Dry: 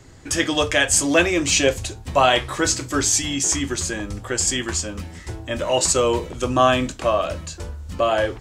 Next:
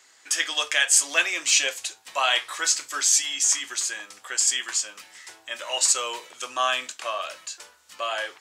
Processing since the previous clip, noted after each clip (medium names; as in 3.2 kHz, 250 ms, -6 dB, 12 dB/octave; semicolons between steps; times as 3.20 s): Bessel high-pass 1.6 kHz, order 2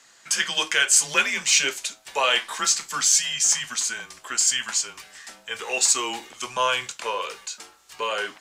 frequency shift -130 Hz; in parallel at -12 dB: saturation -21 dBFS, distortion -9 dB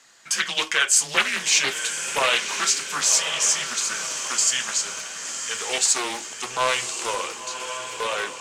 echo that smears into a reverb 1060 ms, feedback 52%, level -8 dB; loudspeaker Doppler distortion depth 0.32 ms